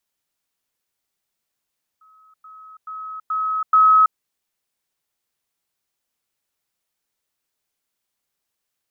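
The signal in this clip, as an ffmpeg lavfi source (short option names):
-f lavfi -i "aevalsrc='pow(10,(-49.5+10*floor(t/0.43))/20)*sin(2*PI*1280*t)*clip(min(mod(t,0.43),0.33-mod(t,0.43))/0.005,0,1)':d=2.15:s=44100"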